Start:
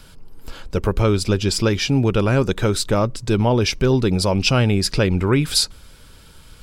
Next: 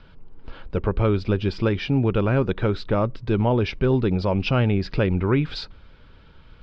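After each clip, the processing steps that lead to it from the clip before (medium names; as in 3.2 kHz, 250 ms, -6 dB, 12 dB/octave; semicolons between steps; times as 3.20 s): Bessel low-pass 2.5 kHz, order 6; trim -3 dB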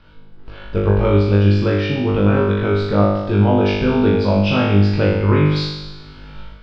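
flutter echo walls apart 3.4 m, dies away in 1 s; level rider gain up to 10 dB; trim -1 dB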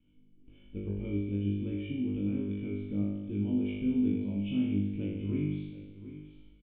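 cascade formant filter i; delay 730 ms -14 dB; trim -8.5 dB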